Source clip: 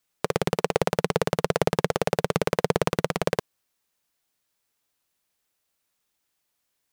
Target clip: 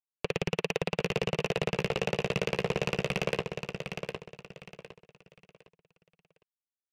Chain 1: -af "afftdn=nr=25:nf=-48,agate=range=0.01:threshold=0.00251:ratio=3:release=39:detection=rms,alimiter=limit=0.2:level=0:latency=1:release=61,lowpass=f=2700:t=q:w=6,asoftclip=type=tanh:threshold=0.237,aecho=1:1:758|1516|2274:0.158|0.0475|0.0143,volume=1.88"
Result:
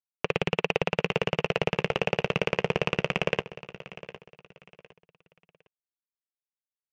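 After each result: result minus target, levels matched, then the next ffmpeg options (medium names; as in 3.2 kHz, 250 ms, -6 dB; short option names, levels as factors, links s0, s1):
saturation: distortion -11 dB; echo-to-direct -9.5 dB
-af "afftdn=nr=25:nf=-48,agate=range=0.01:threshold=0.00251:ratio=3:release=39:detection=rms,alimiter=limit=0.2:level=0:latency=1:release=61,lowpass=f=2700:t=q:w=6,asoftclip=type=tanh:threshold=0.0631,aecho=1:1:758|1516|2274:0.158|0.0475|0.0143,volume=1.88"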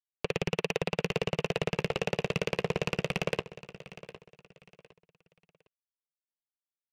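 echo-to-direct -9.5 dB
-af "afftdn=nr=25:nf=-48,agate=range=0.01:threshold=0.00251:ratio=3:release=39:detection=rms,alimiter=limit=0.2:level=0:latency=1:release=61,lowpass=f=2700:t=q:w=6,asoftclip=type=tanh:threshold=0.0631,aecho=1:1:758|1516|2274|3032:0.473|0.142|0.0426|0.0128,volume=1.88"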